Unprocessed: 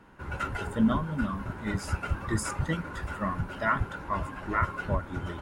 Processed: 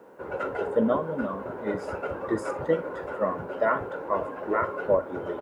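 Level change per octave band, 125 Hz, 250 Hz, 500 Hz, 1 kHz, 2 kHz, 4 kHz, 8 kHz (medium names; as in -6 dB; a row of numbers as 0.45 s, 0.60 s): -9.5 dB, -1.0 dB, +12.0 dB, +1.5 dB, -2.0 dB, no reading, under -10 dB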